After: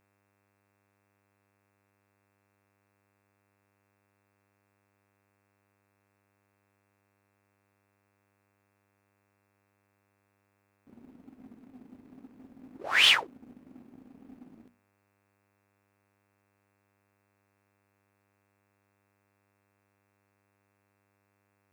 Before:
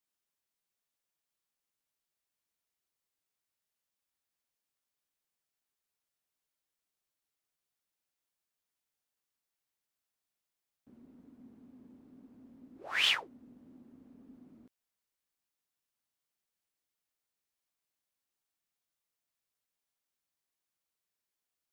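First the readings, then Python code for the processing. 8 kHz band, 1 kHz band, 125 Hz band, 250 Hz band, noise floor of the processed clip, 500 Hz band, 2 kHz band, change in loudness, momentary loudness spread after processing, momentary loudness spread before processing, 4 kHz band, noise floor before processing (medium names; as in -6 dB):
+8.5 dB, +8.5 dB, +6.5 dB, +4.5 dB, -74 dBFS, +8.0 dB, +8.0 dB, +8.0 dB, 7 LU, 7 LU, +7.5 dB, under -85 dBFS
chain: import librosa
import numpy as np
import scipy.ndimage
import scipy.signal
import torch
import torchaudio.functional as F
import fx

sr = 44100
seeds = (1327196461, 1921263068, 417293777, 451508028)

y = fx.dmg_buzz(x, sr, base_hz=100.0, harmonics=27, level_db=-77.0, tilt_db=-3, odd_only=False)
y = fx.hum_notches(y, sr, base_hz=60, count=4)
y = fx.leveller(y, sr, passes=1)
y = y * 10.0 ** (5.0 / 20.0)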